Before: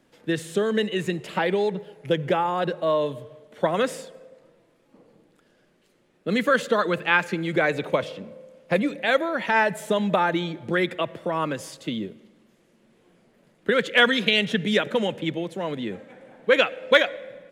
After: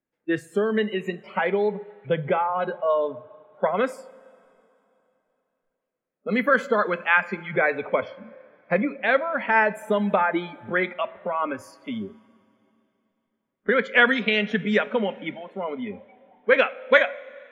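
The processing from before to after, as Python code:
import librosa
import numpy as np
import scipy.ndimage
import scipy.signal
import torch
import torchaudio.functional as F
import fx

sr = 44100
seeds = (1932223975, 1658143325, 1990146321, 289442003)

y = fx.high_shelf_res(x, sr, hz=2800.0, db=-7.5, q=1.5)
y = fx.noise_reduce_blind(y, sr, reduce_db=26)
y = fx.rev_double_slope(y, sr, seeds[0], early_s=0.34, late_s=3.1, knee_db=-17, drr_db=14.5)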